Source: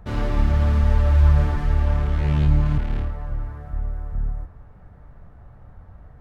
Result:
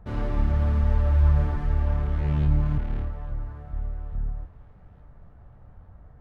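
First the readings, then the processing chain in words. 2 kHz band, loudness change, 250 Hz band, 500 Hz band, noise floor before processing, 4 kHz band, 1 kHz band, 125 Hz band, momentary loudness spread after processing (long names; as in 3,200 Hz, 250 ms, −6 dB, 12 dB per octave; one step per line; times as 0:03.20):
−7.0 dB, −4.0 dB, −4.0 dB, −4.5 dB, −46 dBFS, can't be measured, −5.0 dB, −4.0 dB, 15 LU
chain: high-shelf EQ 2,400 Hz −8.5 dB
delay with a high-pass on its return 854 ms, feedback 53%, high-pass 1,600 Hz, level −19.5 dB
level −4 dB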